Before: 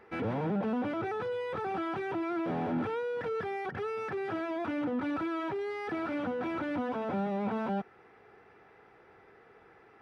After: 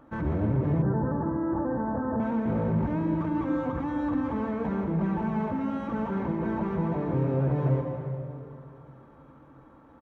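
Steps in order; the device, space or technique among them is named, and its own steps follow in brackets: monster voice (pitch shift -7 st; bass shelf 110 Hz +8 dB; delay 74 ms -11 dB; reverberation RT60 2.5 s, pre-delay 120 ms, DRR 4.5 dB); 0.82–2.20 s: steep low-pass 1.8 kHz 96 dB/octave; trim +2 dB

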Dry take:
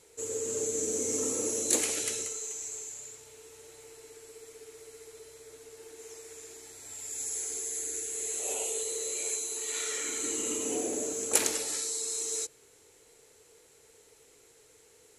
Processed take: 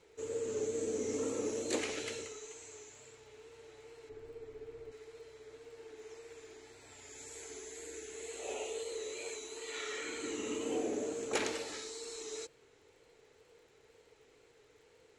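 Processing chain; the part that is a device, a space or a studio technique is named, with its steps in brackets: 4.09–4.92 s: tilt EQ -3 dB/octave; lo-fi chain (low-pass 3.5 kHz 12 dB/octave; wow and flutter; crackle 54 per s -60 dBFS); trim -1.5 dB

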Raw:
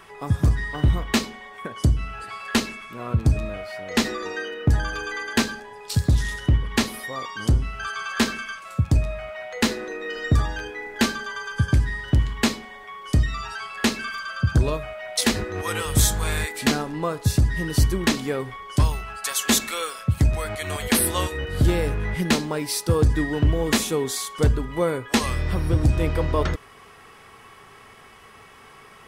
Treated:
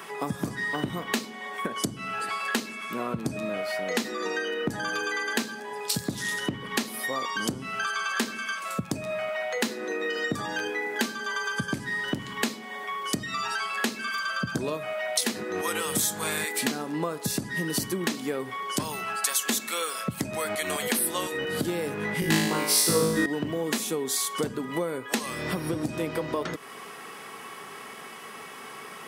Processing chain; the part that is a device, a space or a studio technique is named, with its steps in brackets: high-pass 180 Hz 24 dB/octave; ASMR close-microphone chain (bass shelf 180 Hz +4.5 dB; compression 6:1, threshold -32 dBFS, peak gain reduction 17 dB; treble shelf 8.6 kHz +7.5 dB); 22.20–23.26 s: flutter echo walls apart 3.2 m, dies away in 0.98 s; trim +5.5 dB

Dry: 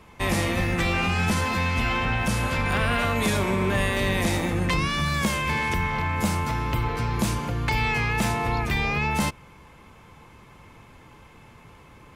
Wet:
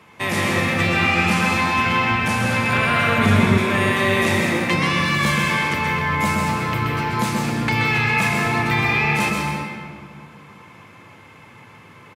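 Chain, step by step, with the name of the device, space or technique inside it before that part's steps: PA in a hall (high-pass 100 Hz 24 dB/octave; peaking EQ 2 kHz +5 dB 1.8 oct; delay 129 ms -7 dB; reverberation RT60 2.1 s, pre-delay 115 ms, DRR 0.5 dB); 3.18–3.58 s: tone controls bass +9 dB, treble -6 dB

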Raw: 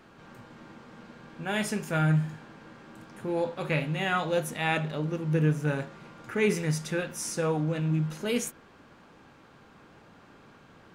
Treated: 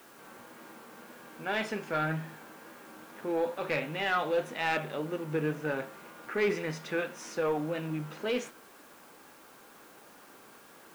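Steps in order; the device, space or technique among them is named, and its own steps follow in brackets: tape answering machine (band-pass 310–3400 Hz; saturation -21 dBFS, distortion -17 dB; wow and flutter; white noise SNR 25 dB); trim +1 dB

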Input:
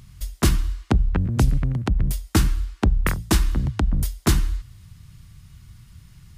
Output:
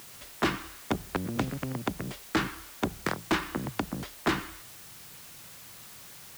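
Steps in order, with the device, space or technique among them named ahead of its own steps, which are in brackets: aircraft radio (band-pass 350–2400 Hz; hard clipper -24.5 dBFS, distortion -7 dB; white noise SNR 14 dB); trim +4 dB

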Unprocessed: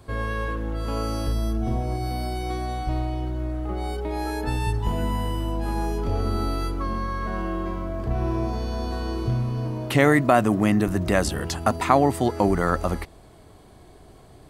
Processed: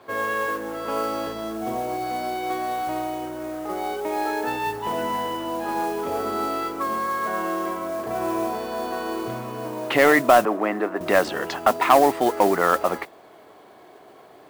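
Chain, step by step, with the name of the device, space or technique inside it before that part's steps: carbon microphone (band-pass 420–2800 Hz; saturation -11.5 dBFS, distortion -16 dB; modulation noise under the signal 19 dB); 10.45–11.01 s: three-band isolator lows -18 dB, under 250 Hz, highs -16 dB, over 2.2 kHz; trim +6.5 dB

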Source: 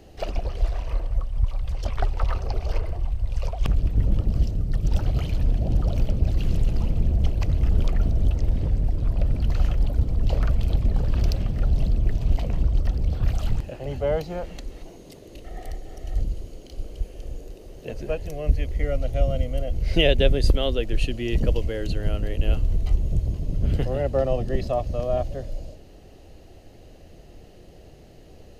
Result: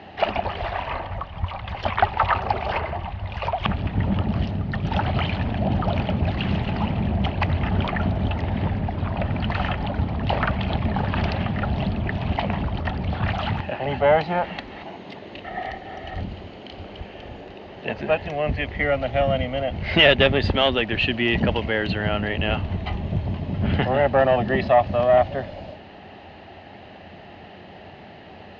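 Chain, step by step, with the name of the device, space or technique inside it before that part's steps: overdrive pedal into a guitar cabinet (overdrive pedal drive 18 dB, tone 4.3 kHz, clips at -5 dBFS; cabinet simulation 79–3500 Hz, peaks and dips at 90 Hz +7 dB, 200 Hz +7 dB, 330 Hz -4 dB, 490 Hz -9 dB, 860 Hz +7 dB, 1.8 kHz +4 dB); trim +2 dB

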